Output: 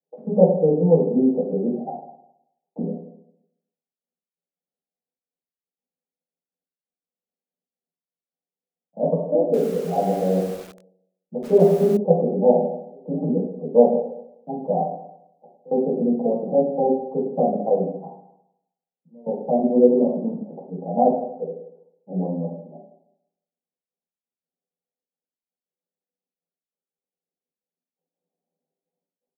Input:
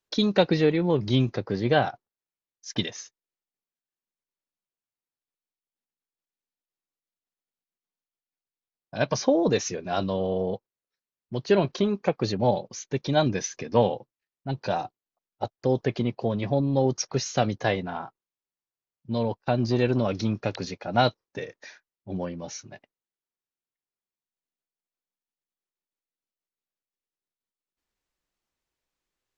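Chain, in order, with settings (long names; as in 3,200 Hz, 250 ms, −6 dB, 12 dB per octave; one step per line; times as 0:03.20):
Butterworth low-pass 760 Hz 48 dB per octave
gate pattern "xx.xx..x.xxxxx" 169 BPM −24 dB
Chebyshev high-pass with heavy ripple 160 Hz, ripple 3 dB
ambience of single reflections 10 ms −14.5 dB, 38 ms −12.5 dB
convolution reverb RT60 0.80 s, pre-delay 3 ms, DRR −6.5 dB
0:09.44–0:11.97: feedback echo at a low word length 96 ms, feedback 55%, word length 6 bits, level −6.5 dB
level −1 dB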